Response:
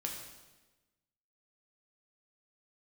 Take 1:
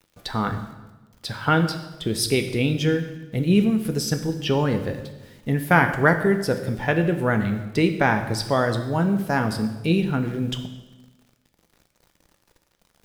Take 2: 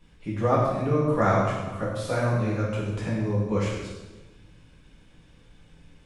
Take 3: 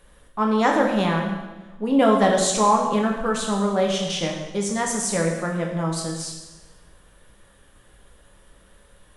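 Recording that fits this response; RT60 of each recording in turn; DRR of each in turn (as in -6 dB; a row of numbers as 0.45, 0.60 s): 3; 1.2, 1.2, 1.2 s; 6.5, -7.0, 0.0 dB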